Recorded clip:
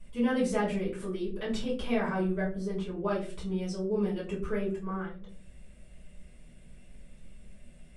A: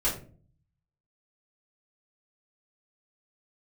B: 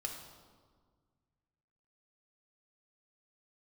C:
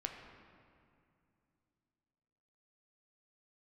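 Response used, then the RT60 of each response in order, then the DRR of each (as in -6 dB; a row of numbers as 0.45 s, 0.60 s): A; 0.40 s, 1.7 s, 2.5 s; -9.5 dB, 1.5 dB, 2.5 dB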